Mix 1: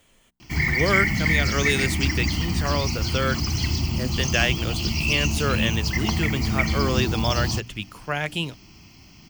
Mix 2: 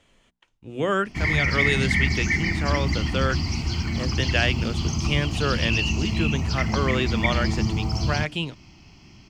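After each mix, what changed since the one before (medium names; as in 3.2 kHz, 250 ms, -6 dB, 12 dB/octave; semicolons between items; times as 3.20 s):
background: entry +0.65 s; master: add distance through air 74 m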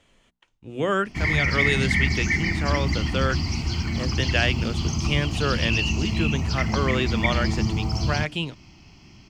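no change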